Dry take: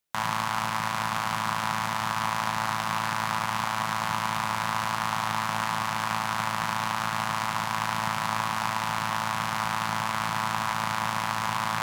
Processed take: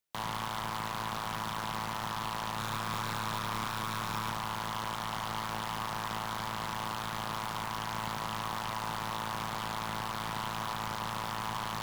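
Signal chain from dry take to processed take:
0:02.55–0:04.32: double-tracking delay 28 ms −4 dB
wave folding −22 dBFS
level −4.5 dB

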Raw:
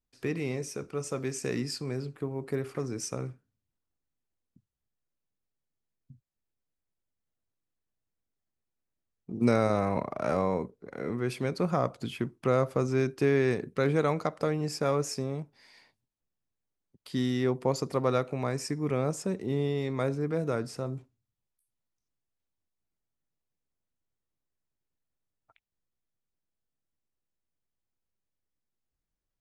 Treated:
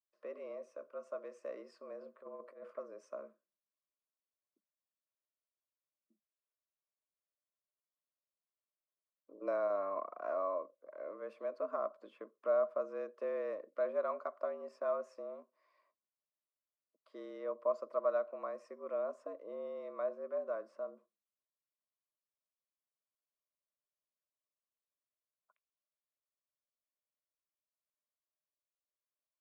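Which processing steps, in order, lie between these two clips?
pair of resonant band-passes 720 Hz, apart 0.91 octaves
frequency shifter +90 Hz
0:02.01–0:02.71: compressor whose output falls as the input rises −46 dBFS, ratio −0.5
level −2 dB

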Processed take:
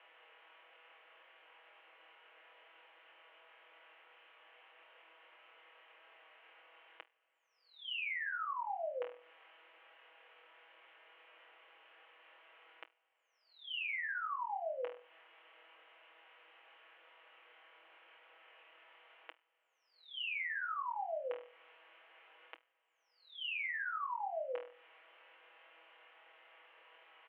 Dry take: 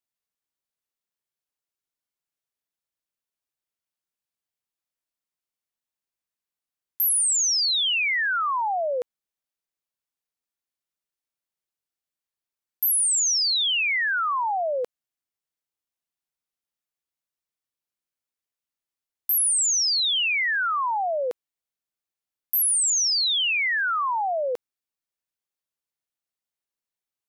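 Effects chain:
compressor on every frequency bin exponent 0.6
on a send: flutter between parallel walls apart 4.2 metres, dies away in 0.31 s
on the sum: downward compressor 20 to 1, threshold −35 dBFS, peak gain reduction 19 dB
Chebyshev band-pass filter 320–3,000 Hz, order 5
comb filter 6.2 ms
level −2.5 dB

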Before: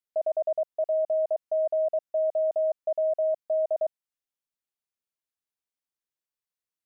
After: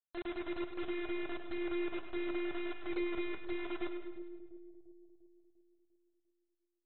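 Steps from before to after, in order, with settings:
frequency axis turned over on the octave scale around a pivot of 470 Hz
noise reduction from a noise print of the clip's start 30 dB
0:02.76–0:03.43: low-shelf EQ 400 Hz +10 dB
brickwall limiter −52 dBFS, peak gain reduction 6.5 dB
harmonic generator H 2 −25 dB, 3 −29 dB, 5 −34 dB, 6 −14 dB, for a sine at −52 dBFS
bit reduction 10 bits
echo with a time of its own for lows and highs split 520 Hz, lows 348 ms, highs 103 ms, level −9.5 dB
on a send at −12 dB: convolution reverb RT60 0.80 s, pre-delay 95 ms
on the sum: level +18 dB
AAC 16 kbit/s 24,000 Hz

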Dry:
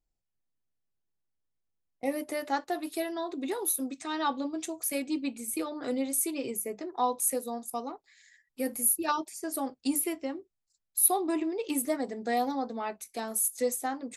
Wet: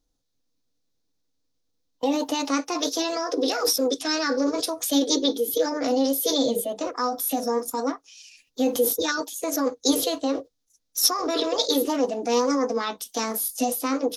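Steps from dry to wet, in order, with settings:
in parallel at 0 dB: compressor whose output falls as the input rises −35 dBFS, ratio −1
on the sum: formants moved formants +6 semitones
flat-topped bell 4,800 Hz +11 dB 1.1 octaves
hollow resonant body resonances 280/480 Hz, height 13 dB, ringing for 75 ms
level −1.5 dB

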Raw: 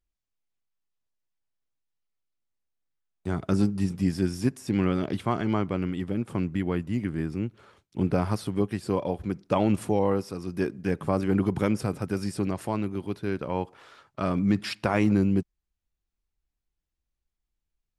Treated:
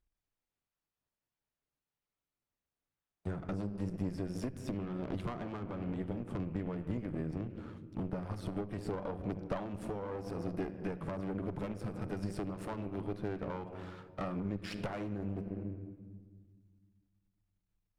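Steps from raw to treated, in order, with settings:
gain on one half-wave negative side −7 dB
high-shelf EQ 3,000 Hz −10.5 dB
rectangular room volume 1,700 cubic metres, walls mixed, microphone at 0.34 metres
downward compressor 10 to 1, threshold −28 dBFS, peak gain reduction 12 dB
tube saturation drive 35 dB, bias 0.8
level +8 dB

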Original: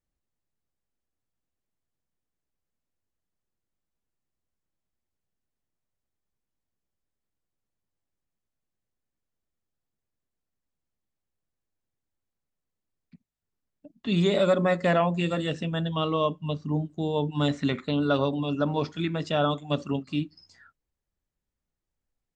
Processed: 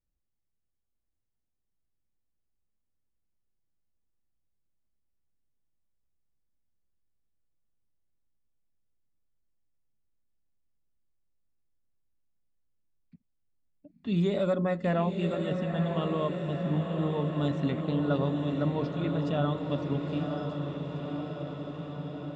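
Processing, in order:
spectral tilt −2 dB per octave
feedback delay with all-pass diffusion 974 ms, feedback 70%, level −5.5 dB
level −7.5 dB

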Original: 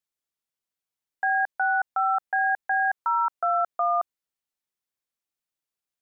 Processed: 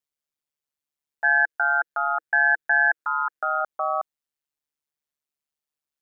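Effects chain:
0:01.24–0:03.61: thirty-one-band graphic EQ 400 Hz +7 dB, 630 Hz −4 dB, 1,000 Hz −5 dB, 1,600 Hz +9 dB
ring modulation 73 Hz
level +1.5 dB

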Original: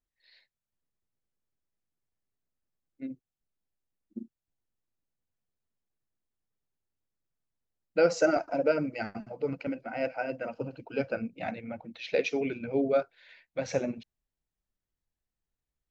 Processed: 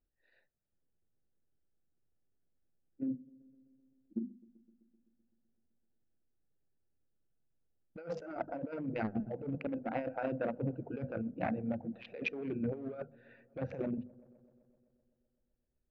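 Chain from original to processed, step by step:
adaptive Wiener filter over 41 samples
low-pass filter 1,900 Hz 12 dB per octave
parametric band 640 Hz −3 dB 0.35 octaves
mains-hum notches 50/100/150/200/250 Hz
compressor whose output falls as the input rises −38 dBFS, ratio −1
delay with a low-pass on its return 128 ms, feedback 72%, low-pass 760 Hz, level −22.5 dB
one half of a high-frequency compander encoder only

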